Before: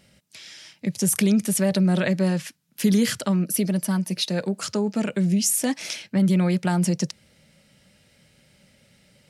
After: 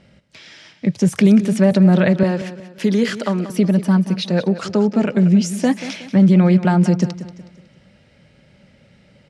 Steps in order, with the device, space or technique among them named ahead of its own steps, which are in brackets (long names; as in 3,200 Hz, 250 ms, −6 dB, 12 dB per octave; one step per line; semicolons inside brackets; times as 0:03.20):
0:02.23–0:03.50: high-pass filter 280 Hz 12 dB per octave
through cloth (low-pass filter 6,400 Hz 12 dB per octave; high-shelf EQ 2,900 Hz −12 dB)
repeating echo 184 ms, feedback 40%, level −13.5 dB
level +8 dB